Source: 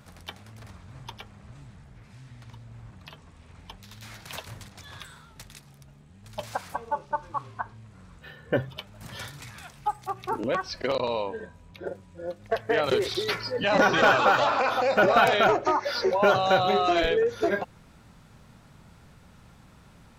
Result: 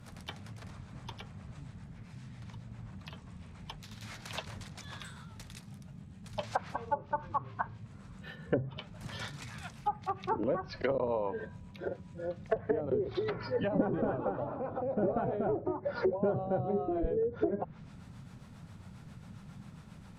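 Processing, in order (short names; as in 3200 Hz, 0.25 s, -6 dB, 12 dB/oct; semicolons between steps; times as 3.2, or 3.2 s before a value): harmonic tremolo 7.4 Hz, depth 50%, crossover 420 Hz; band noise 83–210 Hz -51 dBFS; treble ducked by the level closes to 370 Hz, closed at -23.5 dBFS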